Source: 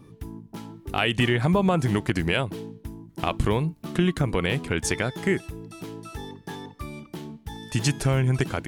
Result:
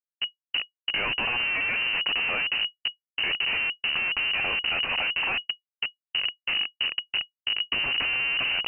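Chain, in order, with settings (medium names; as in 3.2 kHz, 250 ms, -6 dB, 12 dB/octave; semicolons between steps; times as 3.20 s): high-pass 61 Hz 6 dB/octave; peaking EQ 2.1 kHz +7 dB 0.41 oct; band-stop 410 Hz, Q 12; Schmitt trigger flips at -30.5 dBFS; frequency inversion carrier 2.9 kHz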